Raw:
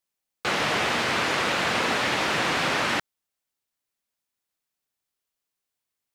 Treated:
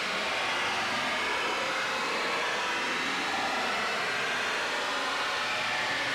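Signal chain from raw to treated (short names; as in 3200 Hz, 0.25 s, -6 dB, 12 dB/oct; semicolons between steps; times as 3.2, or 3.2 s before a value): Paulstretch 19×, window 0.05 s, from 1.73; overdrive pedal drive 10 dB, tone 6600 Hz, clips at -11.5 dBFS; gain -8.5 dB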